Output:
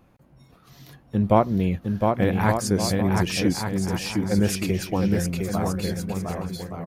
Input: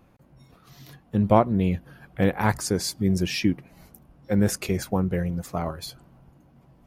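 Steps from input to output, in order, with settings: bouncing-ball echo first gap 710 ms, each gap 0.65×, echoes 5

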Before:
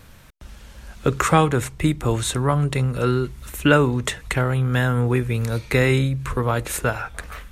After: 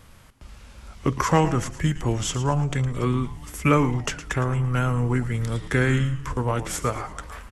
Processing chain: formant shift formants -3 st; frequency-shifting echo 112 ms, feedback 40%, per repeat -140 Hz, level -12.5 dB; trim -3 dB

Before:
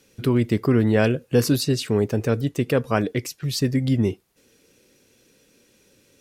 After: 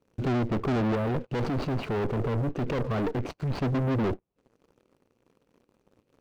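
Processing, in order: median filter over 25 samples; valve stage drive 27 dB, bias 0.8; 0.95–3.60 s: compressor with a negative ratio -34 dBFS, ratio -1; low-pass that closes with the level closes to 1.3 kHz, closed at -30 dBFS; waveshaping leveller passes 3

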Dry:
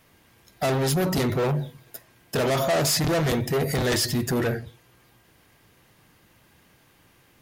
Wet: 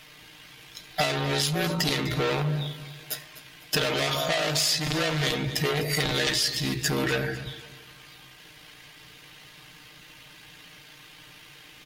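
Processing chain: peaking EQ 3.4 kHz +13 dB 2.1 oct; compression 6:1, threshold -27 dBFS, peak gain reduction 14 dB; granular stretch 1.6×, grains 35 ms; feedback delay 251 ms, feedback 38%, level -16 dB; trim +4.5 dB

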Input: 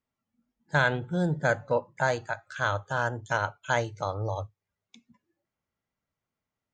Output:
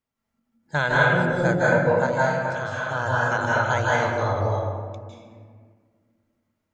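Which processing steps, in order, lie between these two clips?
2.06–2.92 s: compression, threshold -31 dBFS, peak gain reduction 9.5 dB; reverberation RT60 1.8 s, pre-delay 149 ms, DRR -6.5 dB; endings held to a fixed fall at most 110 dB/s

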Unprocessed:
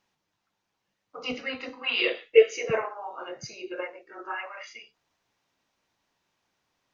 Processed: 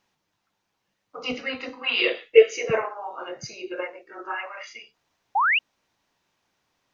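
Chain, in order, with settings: painted sound rise, 5.35–5.59 s, 740–3000 Hz -23 dBFS; trim +3 dB

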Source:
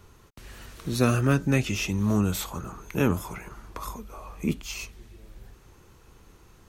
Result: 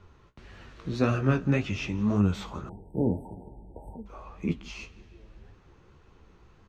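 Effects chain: distance through air 170 m; on a send: feedback delay 170 ms, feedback 59%, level -22.5 dB; on the sum: flange 1.8 Hz, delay 9.3 ms, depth 8.6 ms, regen +39%; 2.69–4.06 s: brick-wall FIR band-stop 940–7900 Hz; trim +2 dB

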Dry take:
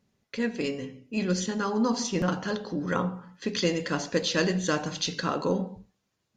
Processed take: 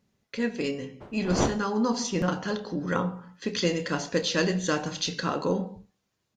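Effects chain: 1.00–1.64 s: wind noise 590 Hz -38 dBFS; doubling 29 ms -13.5 dB

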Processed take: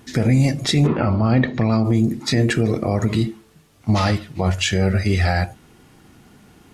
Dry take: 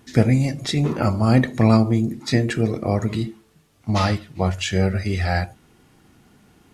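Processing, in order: 0.86–1.83 s: low-pass 3.2 kHz -> 5.7 kHz 24 dB/octave; loudness maximiser +12 dB; trim -7 dB

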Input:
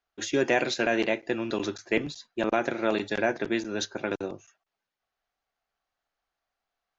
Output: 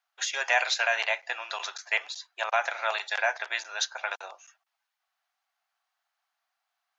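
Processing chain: steep high-pass 720 Hz 36 dB/octave; trim +4 dB

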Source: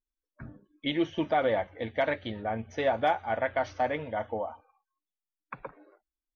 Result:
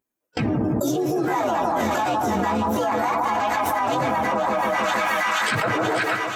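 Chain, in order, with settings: frequency axis rescaled in octaves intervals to 124%; high-pass 140 Hz 12 dB/octave; band-stop 570 Hz, Q 12; harmony voices +4 st -10 dB, +12 st -10 dB; gate with hold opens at -56 dBFS; peaking EQ 3.9 kHz -9.5 dB 1.8 oct; two-band feedback delay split 1.4 kHz, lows 155 ms, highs 480 ms, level -7.5 dB; level flattener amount 100%; trim +1.5 dB

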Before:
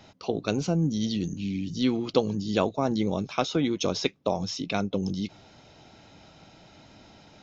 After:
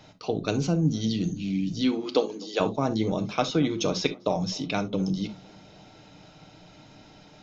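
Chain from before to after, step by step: 1.81–2.59 s: high-pass 150 Hz -> 410 Hz 24 dB/octave; tape echo 253 ms, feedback 72%, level -23.5 dB, low-pass 2.4 kHz; on a send at -7 dB: reverberation, pre-delay 7 ms

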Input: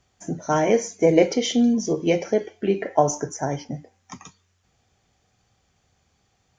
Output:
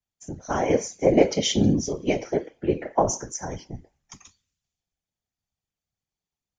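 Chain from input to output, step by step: in parallel at -2 dB: compression, threshold -32 dBFS, peak gain reduction 19.5 dB; on the sum: whisper effect; three bands expanded up and down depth 70%; trim -4.5 dB

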